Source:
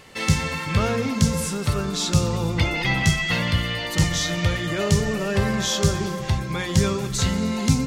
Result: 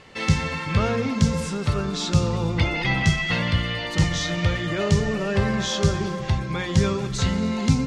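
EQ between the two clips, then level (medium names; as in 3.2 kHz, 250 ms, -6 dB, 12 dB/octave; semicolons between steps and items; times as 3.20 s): distance through air 79 m; 0.0 dB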